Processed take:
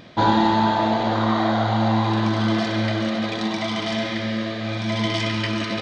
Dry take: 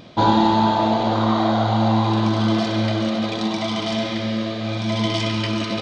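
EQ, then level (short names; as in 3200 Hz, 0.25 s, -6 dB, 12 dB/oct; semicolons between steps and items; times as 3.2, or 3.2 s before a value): bell 1800 Hz +8 dB 0.55 oct; -2.0 dB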